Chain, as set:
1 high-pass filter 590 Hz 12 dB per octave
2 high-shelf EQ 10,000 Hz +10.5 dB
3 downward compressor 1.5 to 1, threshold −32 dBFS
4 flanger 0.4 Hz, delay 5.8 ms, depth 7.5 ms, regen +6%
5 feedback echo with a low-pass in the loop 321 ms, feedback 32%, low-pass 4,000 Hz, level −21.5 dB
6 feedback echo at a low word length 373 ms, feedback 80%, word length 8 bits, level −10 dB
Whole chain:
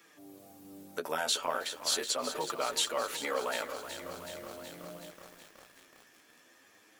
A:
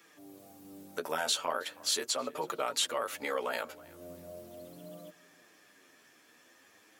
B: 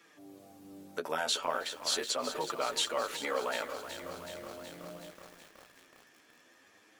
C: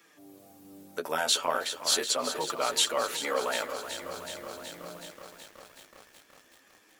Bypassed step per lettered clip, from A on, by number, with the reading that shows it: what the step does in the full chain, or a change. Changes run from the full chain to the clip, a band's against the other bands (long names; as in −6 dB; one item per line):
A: 6, change in momentary loudness spread −2 LU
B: 2, 8 kHz band −2.5 dB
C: 3, change in momentary loudness spread −3 LU